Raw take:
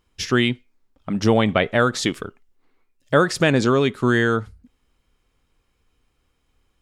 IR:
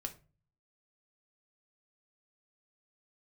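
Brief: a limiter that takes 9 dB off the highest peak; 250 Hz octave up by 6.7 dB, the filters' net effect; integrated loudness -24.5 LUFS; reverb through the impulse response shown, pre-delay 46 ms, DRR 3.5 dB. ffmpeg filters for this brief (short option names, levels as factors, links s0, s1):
-filter_complex "[0:a]equalizer=f=250:t=o:g=8,alimiter=limit=0.335:level=0:latency=1,asplit=2[s0][s1];[1:a]atrim=start_sample=2205,adelay=46[s2];[s1][s2]afir=irnorm=-1:irlink=0,volume=0.841[s3];[s0][s3]amix=inputs=2:normalize=0,volume=0.531"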